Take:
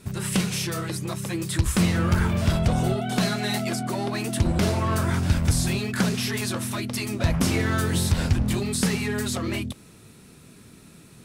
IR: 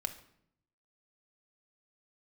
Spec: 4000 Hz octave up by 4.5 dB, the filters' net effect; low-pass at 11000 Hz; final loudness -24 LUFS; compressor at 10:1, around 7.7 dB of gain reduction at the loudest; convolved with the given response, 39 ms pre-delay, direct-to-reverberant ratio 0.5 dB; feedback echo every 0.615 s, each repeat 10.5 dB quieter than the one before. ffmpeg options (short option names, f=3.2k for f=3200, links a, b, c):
-filter_complex "[0:a]lowpass=11k,equalizer=f=4k:t=o:g=5.5,acompressor=threshold=-23dB:ratio=10,aecho=1:1:615|1230|1845:0.299|0.0896|0.0269,asplit=2[a][b];[1:a]atrim=start_sample=2205,adelay=39[c];[b][c]afir=irnorm=-1:irlink=0,volume=-1dB[d];[a][d]amix=inputs=2:normalize=0"